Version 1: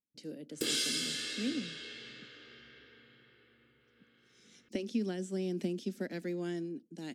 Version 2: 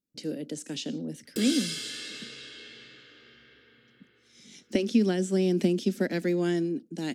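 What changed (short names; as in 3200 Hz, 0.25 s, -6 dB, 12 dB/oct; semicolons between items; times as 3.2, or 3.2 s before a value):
speech +10.5 dB; background: entry +0.75 s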